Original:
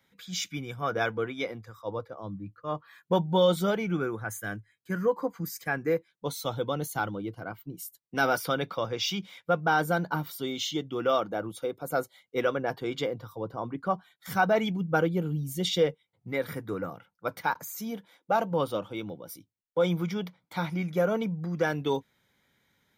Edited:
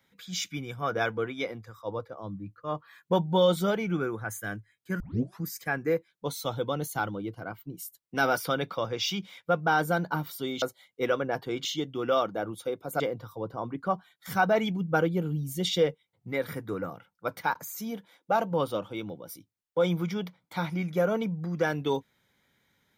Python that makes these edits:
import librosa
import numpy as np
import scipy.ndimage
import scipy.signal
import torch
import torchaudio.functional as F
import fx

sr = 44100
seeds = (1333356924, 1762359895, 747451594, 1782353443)

y = fx.edit(x, sr, fx.tape_start(start_s=5.0, length_s=0.42),
    fx.move(start_s=11.97, length_s=1.03, to_s=10.62), tone=tone)